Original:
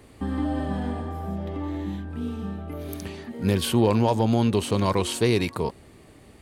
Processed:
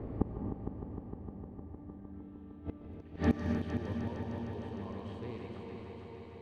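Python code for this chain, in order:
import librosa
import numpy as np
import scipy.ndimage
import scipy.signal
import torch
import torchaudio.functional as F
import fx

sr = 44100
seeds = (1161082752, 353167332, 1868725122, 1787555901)

y = fx.reverse_delay_fb(x, sr, ms=223, feedback_pct=74, wet_db=-6.0)
y = fx.low_shelf(y, sr, hz=460.0, db=4.0)
y = fx.gate_flip(y, sr, shuts_db=-21.0, range_db=-34)
y = fx.filter_sweep_lowpass(y, sr, from_hz=830.0, to_hz=2700.0, start_s=1.58, end_s=2.48, q=0.74)
y = fx.echo_heads(y, sr, ms=153, heads='all three', feedback_pct=74, wet_db=-12.0)
y = fx.rev_gated(y, sr, seeds[0], gate_ms=300, shape='rising', drr_db=5.0)
y = F.gain(torch.from_numpy(y), 7.0).numpy()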